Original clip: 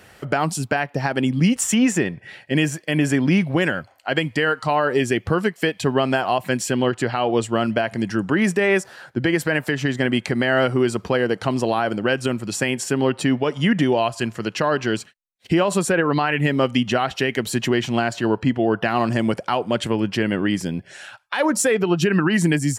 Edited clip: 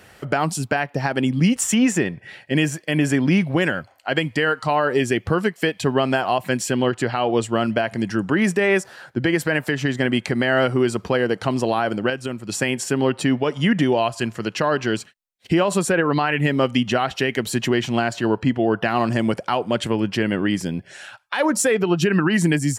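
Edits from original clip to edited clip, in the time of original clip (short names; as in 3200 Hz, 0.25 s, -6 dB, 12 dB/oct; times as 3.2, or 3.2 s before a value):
12.1–12.49 gain -5.5 dB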